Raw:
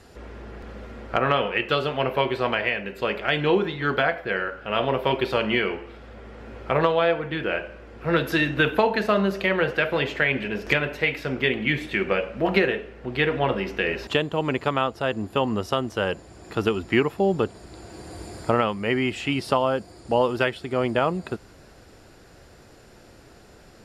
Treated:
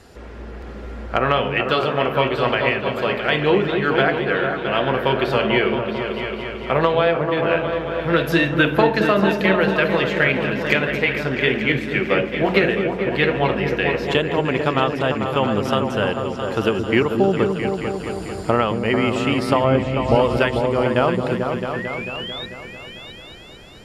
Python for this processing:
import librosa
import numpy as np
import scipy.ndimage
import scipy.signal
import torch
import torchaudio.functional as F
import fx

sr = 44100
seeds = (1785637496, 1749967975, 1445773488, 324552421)

y = fx.riaa(x, sr, side='playback', at=(19.64, 20.15))
y = fx.spec_paint(y, sr, seeds[0], shape='rise', start_s=21.73, length_s=0.73, low_hz=1700.0, high_hz=3900.0, level_db=-35.0)
y = fx.echo_opening(y, sr, ms=222, hz=400, octaves=2, feedback_pct=70, wet_db=-3)
y = fx.band_widen(y, sr, depth_pct=70, at=(11.72, 12.34))
y = y * librosa.db_to_amplitude(3.0)